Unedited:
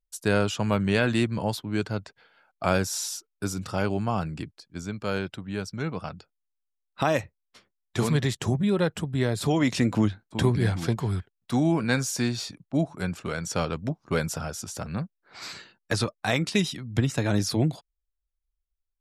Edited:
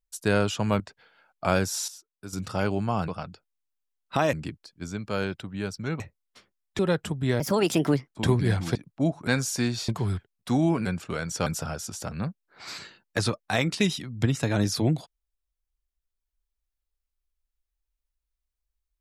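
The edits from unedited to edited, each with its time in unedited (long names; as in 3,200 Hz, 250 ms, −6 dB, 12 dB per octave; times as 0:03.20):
0:00.80–0:01.99: remove
0:03.07–0:03.52: clip gain −11 dB
0:05.94–0:07.19: move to 0:04.27
0:07.98–0:08.71: remove
0:09.32–0:10.23: play speed 135%
0:10.91–0:11.88: swap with 0:12.49–0:13.01
0:13.62–0:14.21: remove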